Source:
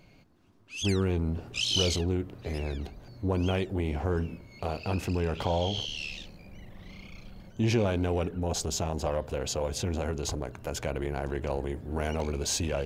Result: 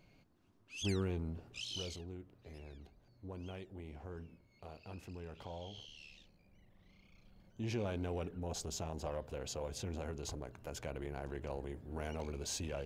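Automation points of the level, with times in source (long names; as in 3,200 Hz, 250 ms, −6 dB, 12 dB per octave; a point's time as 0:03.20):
0:00.98 −8.5 dB
0:02.04 −19 dB
0:07.04 −19 dB
0:07.92 −11 dB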